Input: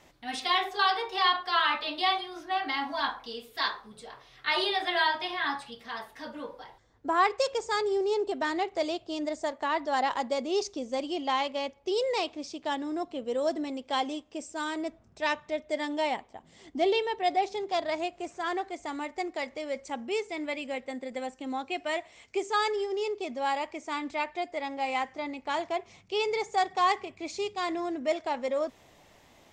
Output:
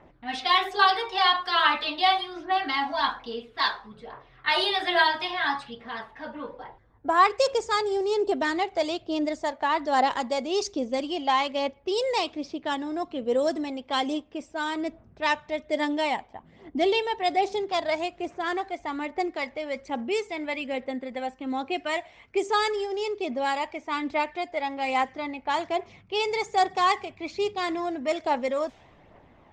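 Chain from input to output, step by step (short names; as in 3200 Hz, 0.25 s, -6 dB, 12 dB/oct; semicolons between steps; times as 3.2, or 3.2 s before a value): low-pass opened by the level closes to 1500 Hz, open at -24.5 dBFS; phaser 1.2 Hz, delay 1.4 ms, feedback 34%; gain +3.5 dB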